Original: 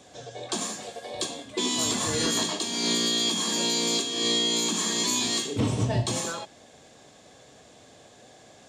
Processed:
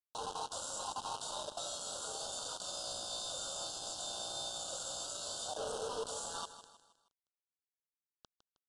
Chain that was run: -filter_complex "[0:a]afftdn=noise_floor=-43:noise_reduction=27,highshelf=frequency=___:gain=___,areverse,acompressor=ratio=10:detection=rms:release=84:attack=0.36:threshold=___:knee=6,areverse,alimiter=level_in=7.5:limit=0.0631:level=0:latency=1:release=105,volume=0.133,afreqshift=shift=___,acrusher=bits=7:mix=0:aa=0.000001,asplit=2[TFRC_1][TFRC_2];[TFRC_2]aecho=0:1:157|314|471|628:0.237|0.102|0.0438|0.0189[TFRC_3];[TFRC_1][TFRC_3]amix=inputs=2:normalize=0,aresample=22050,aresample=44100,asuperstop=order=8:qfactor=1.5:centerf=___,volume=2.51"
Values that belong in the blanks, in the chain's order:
7700, 6, 0.0112, 330, 2100